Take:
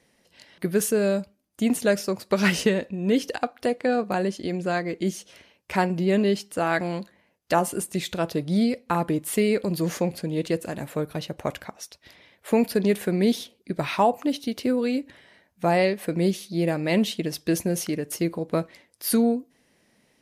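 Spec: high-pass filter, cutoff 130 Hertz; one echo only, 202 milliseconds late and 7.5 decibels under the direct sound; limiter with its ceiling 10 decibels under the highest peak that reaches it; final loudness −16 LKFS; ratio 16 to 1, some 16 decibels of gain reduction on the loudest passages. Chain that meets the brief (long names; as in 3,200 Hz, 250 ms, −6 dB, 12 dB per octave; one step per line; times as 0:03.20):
high-pass filter 130 Hz
downward compressor 16 to 1, threshold −32 dBFS
brickwall limiter −27.5 dBFS
single-tap delay 202 ms −7.5 dB
level +22.5 dB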